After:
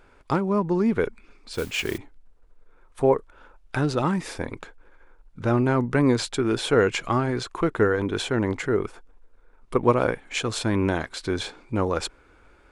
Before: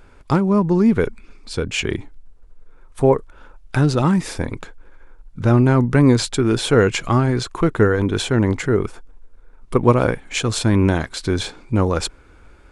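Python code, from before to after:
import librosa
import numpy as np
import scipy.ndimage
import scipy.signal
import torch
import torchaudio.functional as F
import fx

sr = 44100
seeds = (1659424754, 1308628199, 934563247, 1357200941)

y = fx.mod_noise(x, sr, seeds[0], snr_db=15, at=(1.53, 1.98))
y = fx.bass_treble(y, sr, bass_db=-7, treble_db=-4)
y = F.gain(torch.from_numpy(y), -3.5).numpy()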